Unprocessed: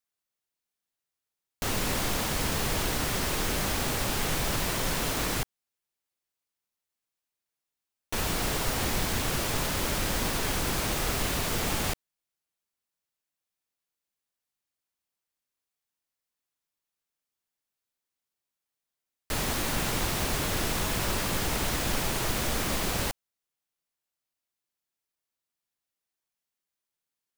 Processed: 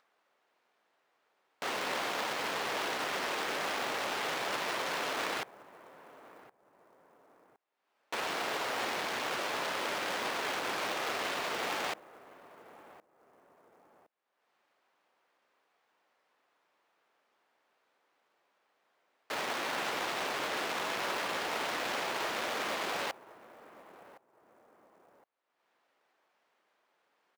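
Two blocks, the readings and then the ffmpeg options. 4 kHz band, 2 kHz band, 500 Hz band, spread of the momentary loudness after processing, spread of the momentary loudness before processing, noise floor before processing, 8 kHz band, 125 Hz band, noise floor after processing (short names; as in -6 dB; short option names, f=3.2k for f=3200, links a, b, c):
-4.5 dB, -1.0 dB, -3.0 dB, 3 LU, 3 LU, under -85 dBFS, -12.0 dB, -23.0 dB, -77 dBFS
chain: -filter_complex "[0:a]asplit=2[a][b];[b]adelay=1064,lowpass=f=1.7k:p=1,volume=-16dB,asplit=2[c][d];[d]adelay=1064,lowpass=f=1.7k:p=1,volume=0.15[e];[a][c][e]amix=inputs=3:normalize=0,adynamicsmooth=sensitivity=5:basefreq=1.6k,highpass=490,acrusher=bits=4:mode=log:mix=0:aa=0.000001,acompressor=mode=upward:threshold=-53dB:ratio=2.5"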